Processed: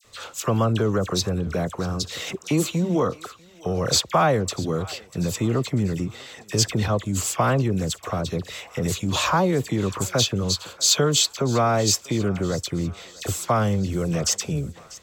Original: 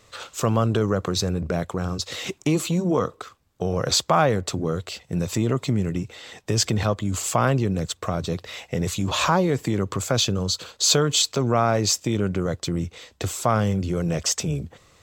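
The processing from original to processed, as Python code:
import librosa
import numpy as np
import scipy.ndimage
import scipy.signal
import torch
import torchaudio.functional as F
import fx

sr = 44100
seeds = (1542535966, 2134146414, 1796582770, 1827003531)

p1 = fx.high_shelf(x, sr, hz=11000.0, db=4.5)
p2 = fx.dispersion(p1, sr, late='lows', ms=48.0, hz=1900.0)
y = p2 + fx.echo_thinned(p2, sr, ms=643, feedback_pct=53, hz=750.0, wet_db=-19, dry=0)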